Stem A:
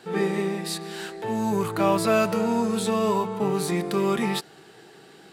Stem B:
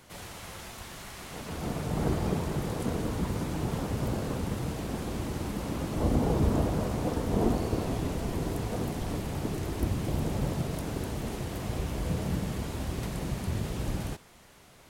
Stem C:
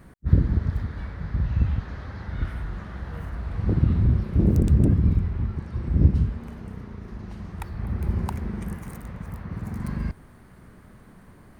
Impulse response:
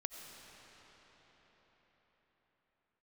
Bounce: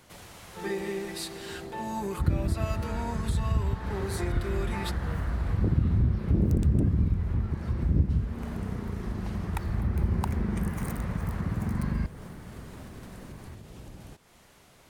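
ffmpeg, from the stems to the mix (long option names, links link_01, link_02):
-filter_complex "[0:a]highpass=260,aecho=1:1:5.6:0.75,adelay=500,volume=-7dB[link_01];[1:a]alimiter=level_in=1dB:limit=-24dB:level=0:latency=1:release=491,volume=-1dB,acompressor=threshold=-43dB:ratio=3,volume=-1.5dB[link_02];[2:a]dynaudnorm=framelen=120:gausssize=31:maxgain=6dB,adelay=1950,volume=2.5dB[link_03];[link_01][link_02][link_03]amix=inputs=3:normalize=0,acompressor=threshold=-29dB:ratio=2"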